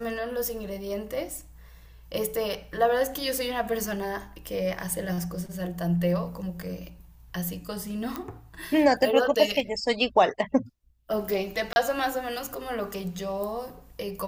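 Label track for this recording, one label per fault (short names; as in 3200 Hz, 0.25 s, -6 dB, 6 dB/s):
8.160000	8.160000	pop -17 dBFS
11.730000	11.760000	gap 30 ms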